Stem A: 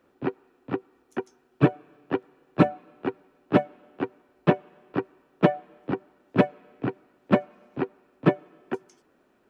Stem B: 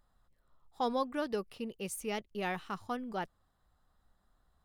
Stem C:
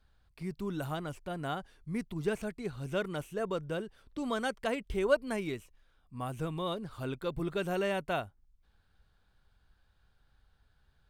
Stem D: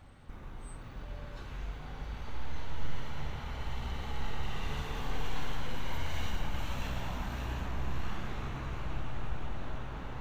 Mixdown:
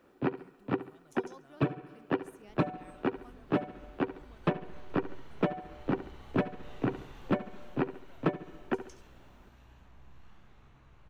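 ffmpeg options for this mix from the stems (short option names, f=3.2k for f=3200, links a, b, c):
-filter_complex "[0:a]volume=1.5dB,asplit=2[a][b];[b]volume=-14.5dB[c];[1:a]adelay=350,volume=-20dB[d];[2:a]acompressor=threshold=-42dB:ratio=6,volume=-17dB[e];[3:a]adelay=2200,volume=-13dB,afade=t=out:st=7.17:d=0.66:silence=0.398107[f];[c]aecho=0:1:69|138|207|276|345:1|0.35|0.122|0.0429|0.015[g];[a][d][e][f][g]amix=inputs=5:normalize=0,acompressor=threshold=-25dB:ratio=10"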